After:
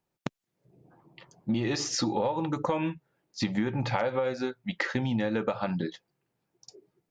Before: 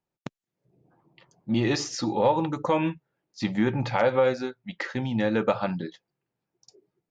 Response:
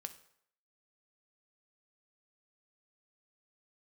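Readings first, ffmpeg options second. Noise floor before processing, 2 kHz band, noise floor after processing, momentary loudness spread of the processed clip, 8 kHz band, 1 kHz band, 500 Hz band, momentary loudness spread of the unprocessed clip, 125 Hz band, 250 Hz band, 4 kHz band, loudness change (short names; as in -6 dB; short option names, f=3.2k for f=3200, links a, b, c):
under -85 dBFS, -2.5 dB, -83 dBFS, 12 LU, n/a, -4.5 dB, -5.5 dB, 17 LU, -2.0 dB, -2.5 dB, 0.0 dB, -4.0 dB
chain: -af "acompressor=threshold=-29dB:ratio=12,volume=4.5dB"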